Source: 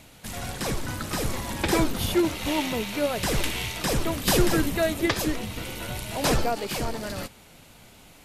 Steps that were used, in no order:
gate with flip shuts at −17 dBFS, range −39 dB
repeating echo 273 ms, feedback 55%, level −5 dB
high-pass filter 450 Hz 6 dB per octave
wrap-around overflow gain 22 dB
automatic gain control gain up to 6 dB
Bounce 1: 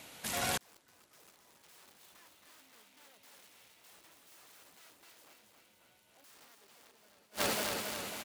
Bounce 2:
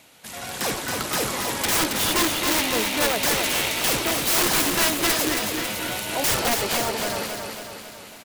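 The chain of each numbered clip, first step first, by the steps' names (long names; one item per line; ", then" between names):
wrap-around overflow, then repeating echo, then automatic gain control, then gate with flip, then high-pass filter
high-pass filter, then wrap-around overflow, then gate with flip, then repeating echo, then automatic gain control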